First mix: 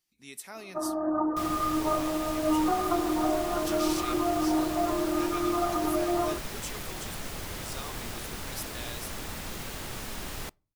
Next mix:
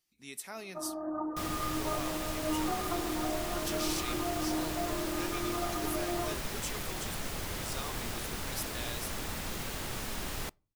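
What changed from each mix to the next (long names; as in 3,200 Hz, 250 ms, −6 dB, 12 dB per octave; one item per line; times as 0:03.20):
first sound −8.0 dB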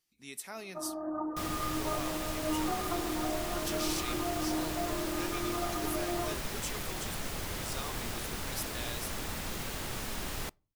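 nothing changed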